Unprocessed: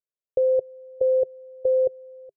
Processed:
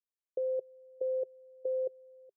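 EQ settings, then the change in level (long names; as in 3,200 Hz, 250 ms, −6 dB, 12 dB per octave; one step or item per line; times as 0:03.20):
four-pole ladder band-pass 370 Hz, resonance 20%
0.0 dB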